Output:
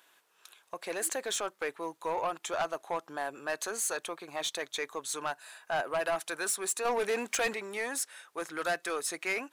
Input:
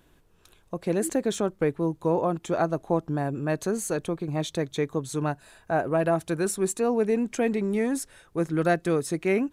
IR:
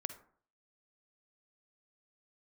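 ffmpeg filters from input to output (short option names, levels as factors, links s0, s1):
-filter_complex "[0:a]highpass=960,asettb=1/sr,asplit=3[s0][s1][s2];[s0]atrim=end=6.854[s3];[s1]atrim=start=6.85:end=7.54,asetpts=PTS-STARTPTS,afade=t=in:d=0.004:c=qsin,afade=t=out:st=0.686:d=0.004:c=qsin,acontrast=77[s4];[s2]atrim=start=7.536[s5];[s3][s4]acrossfade=d=0.004:c1=hsin:c2=qsin[s6];[s6][s5]acrossfade=d=0.004:c1=qsin:c2=hsin,asoftclip=type=tanh:threshold=0.0376,volume=1.58"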